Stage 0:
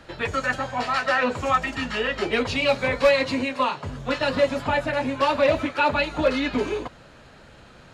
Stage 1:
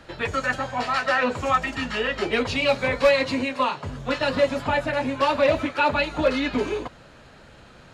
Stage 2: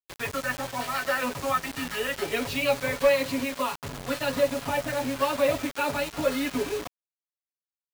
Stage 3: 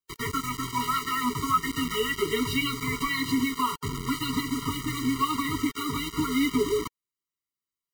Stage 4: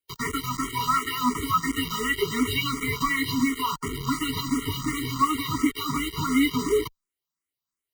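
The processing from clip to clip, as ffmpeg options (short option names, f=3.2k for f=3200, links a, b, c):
-af anull
-af "aecho=1:1:7.2:0.56,acrusher=bits=4:mix=0:aa=0.000001,volume=-6.5dB"
-filter_complex "[0:a]asplit=2[a][b];[b]alimiter=limit=-22.5dB:level=0:latency=1:release=124,volume=0dB[c];[a][c]amix=inputs=2:normalize=0,afftfilt=real='re*eq(mod(floor(b*sr/1024/460),2),0)':imag='im*eq(mod(floor(b*sr/1024/460),2),0)':win_size=1024:overlap=0.75"
-filter_complex "[0:a]asplit=2[a][b];[b]afreqshift=2.8[c];[a][c]amix=inputs=2:normalize=1,volume=5dB"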